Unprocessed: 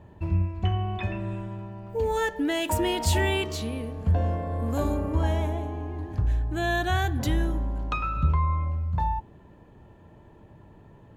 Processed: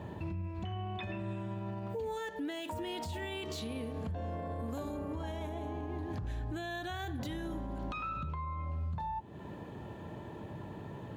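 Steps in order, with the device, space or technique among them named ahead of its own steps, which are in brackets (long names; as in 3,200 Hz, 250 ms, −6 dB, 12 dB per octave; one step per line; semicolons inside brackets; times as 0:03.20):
broadcast voice chain (high-pass filter 100 Hz 12 dB per octave; de-essing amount 80%; downward compressor 4 to 1, threshold −43 dBFS, peak gain reduction 17.5 dB; parametric band 3,700 Hz +4 dB 0.49 octaves; brickwall limiter −39 dBFS, peak gain reduction 10.5 dB)
level +8 dB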